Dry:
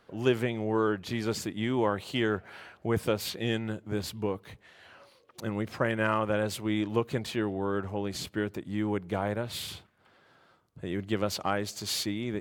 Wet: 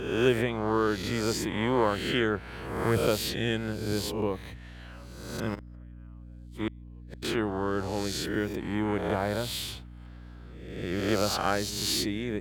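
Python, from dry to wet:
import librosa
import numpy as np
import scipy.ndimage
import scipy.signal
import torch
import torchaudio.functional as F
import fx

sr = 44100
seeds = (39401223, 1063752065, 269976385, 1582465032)

y = fx.spec_swells(x, sr, rise_s=1.01)
y = fx.gate_flip(y, sr, shuts_db=-18.0, range_db=-41, at=(5.54, 7.22), fade=0.02)
y = fx.add_hum(y, sr, base_hz=60, snr_db=15)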